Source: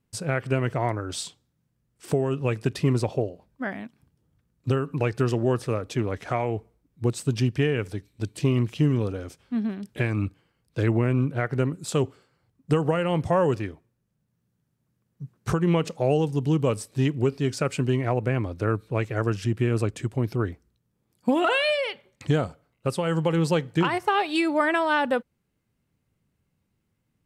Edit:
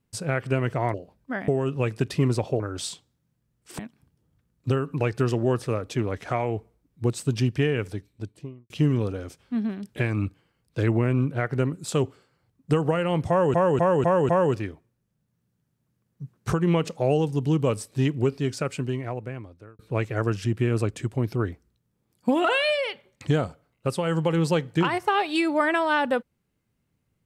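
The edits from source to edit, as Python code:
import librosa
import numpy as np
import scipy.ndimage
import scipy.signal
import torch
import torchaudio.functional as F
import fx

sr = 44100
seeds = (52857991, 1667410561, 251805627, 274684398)

y = fx.studio_fade_out(x, sr, start_s=7.85, length_s=0.85)
y = fx.edit(y, sr, fx.swap(start_s=0.94, length_s=1.19, other_s=3.25, other_length_s=0.54),
    fx.repeat(start_s=13.29, length_s=0.25, count=5),
    fx.fade_out_span(start_s=17.27, length_s=1.52), tone=tone)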